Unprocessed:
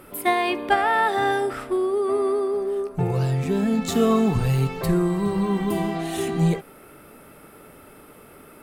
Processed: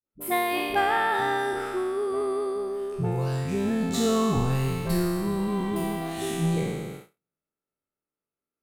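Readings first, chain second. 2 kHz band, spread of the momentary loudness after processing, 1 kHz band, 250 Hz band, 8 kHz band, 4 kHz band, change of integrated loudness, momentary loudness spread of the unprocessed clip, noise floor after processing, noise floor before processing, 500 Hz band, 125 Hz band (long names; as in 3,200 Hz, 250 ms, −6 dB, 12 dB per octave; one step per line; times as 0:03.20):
−2.5 dB, 7 LU, −3.5 dB, −4.0 dB, 0.0 dB, −1.0 dB, −4.0 dB, 5 LU, below −85 dBFS, −48 dBFS, −4.5 dB, −4.5 dB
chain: peak hold with a decay on every bin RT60 1.79 s
noise gate −31 dBFS, range −44 dB
all-pass dispersion highs, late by 58 ms, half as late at 340 Hz
level −6 dB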